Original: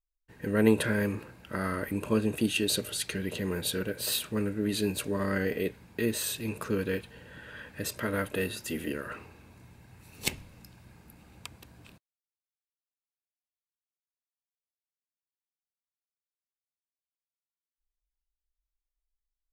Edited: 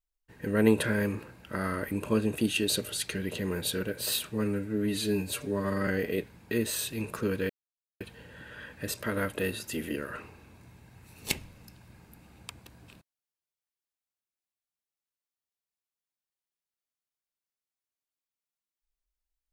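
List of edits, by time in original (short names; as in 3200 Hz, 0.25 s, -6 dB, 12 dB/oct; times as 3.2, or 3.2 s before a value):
4.3–5.35 stretch 1.5×
6.97 insert silence 0.51 s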